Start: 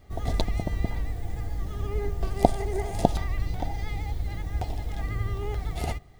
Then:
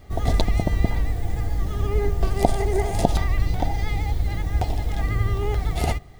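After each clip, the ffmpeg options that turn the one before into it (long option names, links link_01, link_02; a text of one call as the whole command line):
ffmpeg -i in.wav -af "alimiter=level_in=8dB:limit=-1dB:release=50:level=0:latency=1,volume=-1dB" out.wav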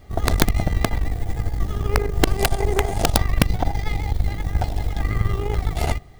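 ffmpeg -i in.wav -af "aeval=exprs='0.794*(cos(1*acos(clip(val(0)/0.794,-1,1)))-cos(1*PI/2))+0.158*(cos(2*acos(clip(val(0)/0.794,-1,1)))-cos(2*PI/2))+0.158*(cos(4*acos(clip(val(0)/0.794,-1,1)))-cos(4*PI/2))+0.0398*(cos(8*acos(clip(val(0)/0.794,-1,1)))-cos(8*PI/2))':channel_layout=same,aeval=exprs='(mod(2*val(0)+1,2)-1)/2':channel_layout=same" out.wav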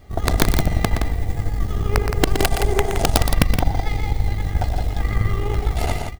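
ffmpeg -i in.wav -af "aecho=1:1:119.5|169.1:0.398|0.447" out.wav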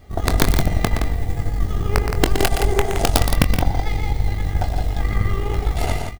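ffmpeg -i in.wav -filter_complex "[0:a]asplit=2[link_01][link_02];[link_02]adelay=23,volume=-10dB[link_03];[link_01][link_03]amix=inputs=2:normalize=0" out.wav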